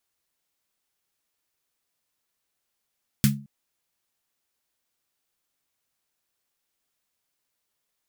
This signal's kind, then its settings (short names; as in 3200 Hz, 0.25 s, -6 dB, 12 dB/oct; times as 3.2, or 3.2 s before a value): snare drum length 0.22 s, tones 140 Hz, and 210 Hz, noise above 1300 Hz, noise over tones -5 dB, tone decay 0.38 s, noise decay 0.16 s